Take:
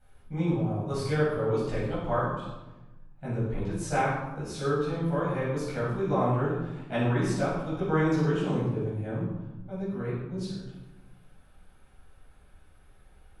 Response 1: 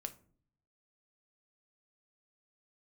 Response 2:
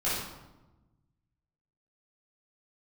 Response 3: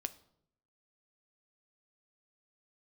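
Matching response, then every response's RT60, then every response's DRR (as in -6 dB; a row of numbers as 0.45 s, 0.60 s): 2; 0.50 s, 1.1 s, 0.70 s; 7.5 dB, -11.0 dB, 10.5 dB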